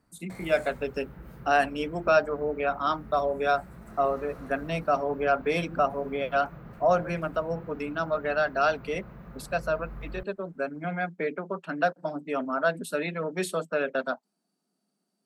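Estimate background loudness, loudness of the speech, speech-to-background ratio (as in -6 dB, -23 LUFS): -46.5 LUFS, -28.5 LUFS, 18.0 dB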